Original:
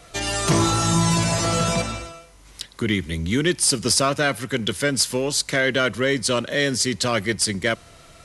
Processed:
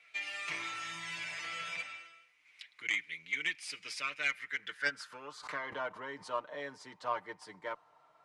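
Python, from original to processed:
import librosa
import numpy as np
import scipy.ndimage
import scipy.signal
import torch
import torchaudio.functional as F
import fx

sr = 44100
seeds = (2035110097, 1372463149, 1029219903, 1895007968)

y = fx.filter_sweep_bandpass(x, sr, from_hz=2300.0, to_hz=930.0, start_s=4.26, end_s=5.77, q=6.1)
y = fx.cheby_harmonics(y, sr, harmonics=(3, 5), levels_db=(-14, -34), full_scale_db=-18.5)
y = y + 0.61 * np.pad(y, (int(6.6 * sr / 1000.0), 0))[:len(y)]
y = fx.pre_swell(y, sr, db_per_s=94.0, at=(5.12, 6.31))
y = F.gain(torch.from_numpy(y), 3.0).numpy()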